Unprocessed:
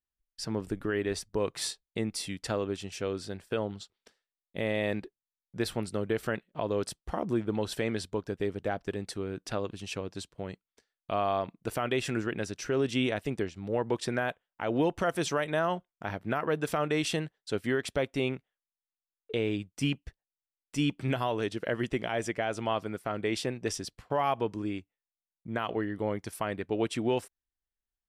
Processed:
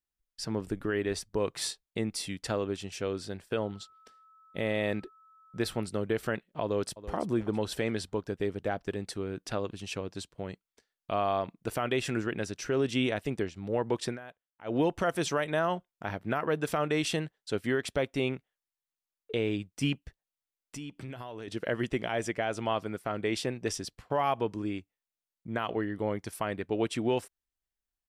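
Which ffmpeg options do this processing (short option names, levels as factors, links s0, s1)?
-filter_complex "[0:a]asettb=1/sr,asplit=3[s0][s1][s2];[s0]atrim=end=3.624[s3];[s1]atrim=start=3.62:end=5.87,asetpts=PTS-STARTPTS,afade=t=in:d=0.004:c=qsin,afade=t=out:st=2.246:d=0.004:c=qsin,aeval=exprs='val(0)+0.00141*sin(2*PI*1300*n/s)':c=same[s4];[s2]atrim=start=5.866[s5];[s3][s4]acrossfade=d=0.004:c1=hsin:c2=qsin[s6];[s6][s5]acrossfade=d=0.004:c1=qsin:c2=hsin,asplit=2[s7][s8];[s8]afade=t=in:st=6.63:d=0.01,afade=t=out:st=7.16:d=0.01,aecho=0:1:330|660|990:0.188365|0.0565095|0.0169528[s9];[s7][s9]amix=inputs=2:normalize=0,asettb=1/sr,asplit=3[s10][s11][s12];[s10]atrim=end=20.034[s13];[s11]atrim=start=20.03:end=21.48,asetpts=PTS-STARTPTS,afade=t=in:d=0.004:c=qsin,afade=t=out:st=1.446:d=0.004:c=qsin,acompressor=threshold=0.0126:ratio=6:attack=3.2:release=140:knee=1:detection=peak[s14];[s12]atrim=start=21.476[s15];[s13][s14]acrossfade=d=0.004:c1=hsin:c2=qsin[s16];[s16][s15]acrossfade=d=0.004:c1=qsin:c2=hsin,asplit=3[s17][s18][s19];[s17]atrim=end=14.18,asetpts=PTS-STARTPTS,afade=t=out:st=14.05:d=0.13:c=qsin:silence=0.16788[s20];[s18]atrim=start=14.18:end=14.64,asetpts=PTS-STARTPTS,volume=0.168[s21];[s19]atrim=start=14.64,asetpts=PTS-STARTPTS,afade=t=in:d=0.13:c=qsin:silence=0.16788[s22];[s20][s21][s22]concat=n=3:v=0:a=1"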